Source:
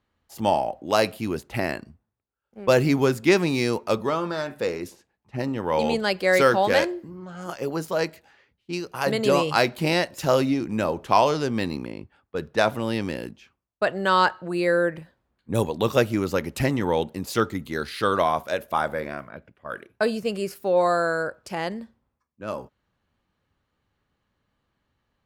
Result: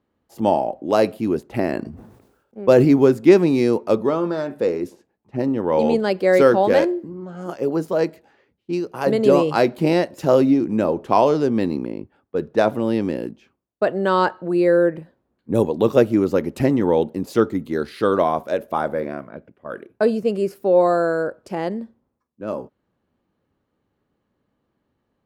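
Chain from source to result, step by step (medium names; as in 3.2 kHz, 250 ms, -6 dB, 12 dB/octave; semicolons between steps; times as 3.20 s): peaking EQ 330 Hz +14 dB 2.9 oct; 1.56–2.85 s: decay stretcher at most 62 dB/s; trim -6 dB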